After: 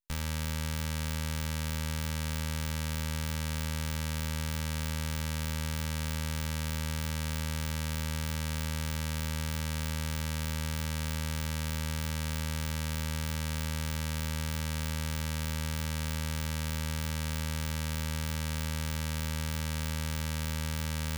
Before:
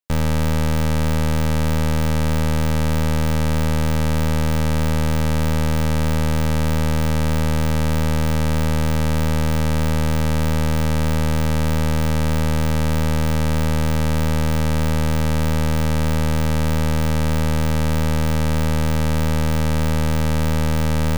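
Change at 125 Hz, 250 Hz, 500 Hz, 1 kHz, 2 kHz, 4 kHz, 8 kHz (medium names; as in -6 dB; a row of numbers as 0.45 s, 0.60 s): -14.0 dB, -16.5 dB, -19.0 dB, -15.5 dB, -10.0 dB, -7.0 dB, -6.0 dB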